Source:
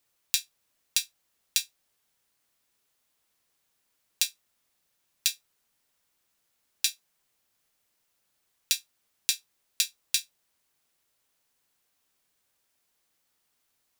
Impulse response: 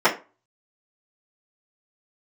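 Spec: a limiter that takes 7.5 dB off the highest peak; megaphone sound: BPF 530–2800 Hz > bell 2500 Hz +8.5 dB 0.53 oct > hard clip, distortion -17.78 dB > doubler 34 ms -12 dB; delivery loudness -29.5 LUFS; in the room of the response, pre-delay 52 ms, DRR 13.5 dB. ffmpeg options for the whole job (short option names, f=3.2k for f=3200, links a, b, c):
-filter_complex "[0:a]alimiter=limit=-9dB:level=0:latency=1,asplit=2[a][b];[1:a]atrim=start_sample=2205,adelay=52[c];[b][c]afir=irnorm=-1:irlink=0,volume=-34.5dB[d];[a][d]amix=inputs=2:normalize=0,highpass=530,lowpass=2.8k,equalizer=f=2.5k:t=o:w=0.53:g=8.5,asoftclip=type=hard:threshold=-27dB,asplit=2[e][f];[f]adelay=34,volume=-12dB[g];[e][g]amix=inputs=2:normalize=0,volume=11.5dB"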